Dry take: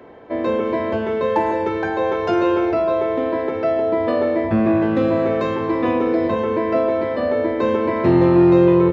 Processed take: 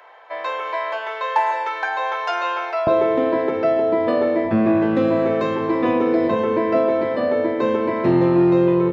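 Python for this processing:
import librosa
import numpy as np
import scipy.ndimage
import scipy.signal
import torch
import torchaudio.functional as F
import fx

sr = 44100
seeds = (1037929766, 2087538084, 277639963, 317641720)

y = fx.highpass(x, sr, hz=fx.steps((0.0, 770.0), (2.87, 110.0)), slope=24)
y = fx.rider(y, sr, range_db=4, speed_s=2.0)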